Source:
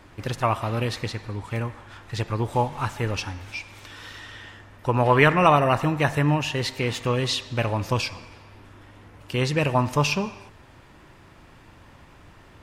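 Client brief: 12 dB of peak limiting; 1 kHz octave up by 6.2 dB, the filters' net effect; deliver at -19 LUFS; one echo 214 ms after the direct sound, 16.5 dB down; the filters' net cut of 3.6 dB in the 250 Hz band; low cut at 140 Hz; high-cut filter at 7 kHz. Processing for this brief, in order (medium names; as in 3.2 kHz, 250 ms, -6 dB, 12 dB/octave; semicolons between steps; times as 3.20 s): high-pass 140 Hz; low-pass 7 kHz; peaking EQ 250 Hz -4.5 dB; peaking EQ 1 kHz +7.5 dB; peak limiter -11.5 dBFS; delay 214 ms -16.5 dB; trim +6.5 dB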